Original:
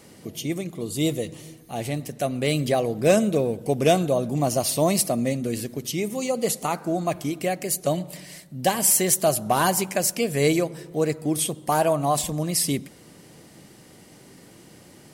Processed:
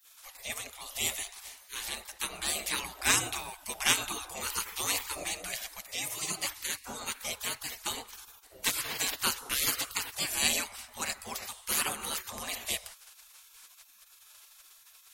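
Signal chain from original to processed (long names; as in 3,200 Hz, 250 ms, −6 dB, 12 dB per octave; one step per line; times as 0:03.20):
bucket-brigade delay 166 ms, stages 1,024, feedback 34%, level −20.5 dB
gate on every frequency bin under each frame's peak −25 dB weak
level +6 dB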